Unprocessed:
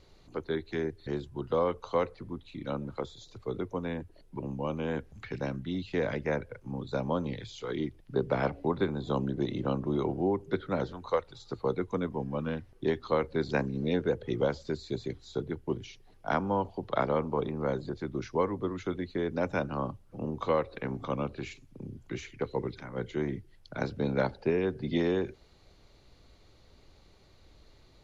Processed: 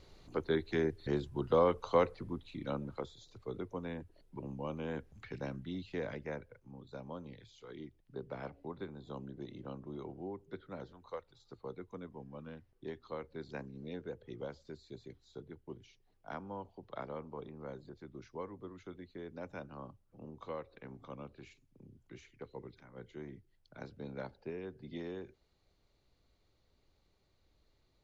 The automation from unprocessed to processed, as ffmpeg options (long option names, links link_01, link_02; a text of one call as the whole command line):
ffmpeg -i in.wav -af "afade=type=out:start_time=2.05:duration=1.12:silence=0.446684,afade=type=out:start_time=5.66:duration=1.06:silence=0.398107" out.wav